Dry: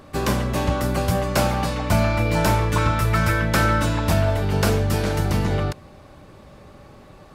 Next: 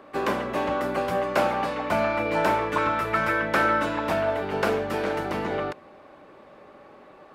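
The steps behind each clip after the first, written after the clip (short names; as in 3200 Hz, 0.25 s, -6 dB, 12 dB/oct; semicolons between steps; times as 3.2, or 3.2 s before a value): three-band isolator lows -22 dB, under 250 Hz, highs -15 dB, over 3000 Hz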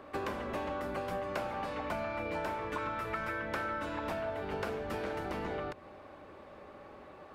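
octaver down 2 oct, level -6 dB; compressor 5:1, threshold -32 dBFS, peak gain reduction 13 dB; gain -2.5 dB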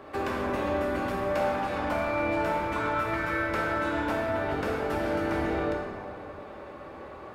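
in parallel at -7.5 dB: overloaded stage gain 35.5 dB; on the sum: plate-style reverb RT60 2.3 s, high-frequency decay 0.5×, DRR -3.5 dB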